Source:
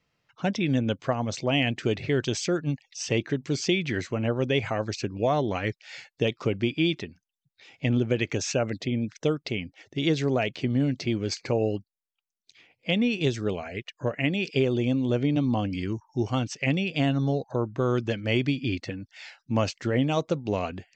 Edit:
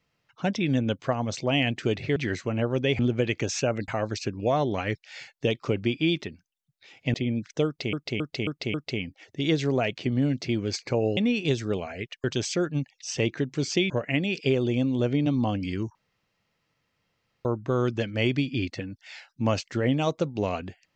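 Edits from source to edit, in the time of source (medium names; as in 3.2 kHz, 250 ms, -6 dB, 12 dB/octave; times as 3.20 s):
2.16–3.82 s: move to 14.00 s
7.91–8.80 s: move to 4.65 s
9.32–9.59 s: loop, 5 plays
11.75–12.93 s: delete
16.05–17.55 s: room tone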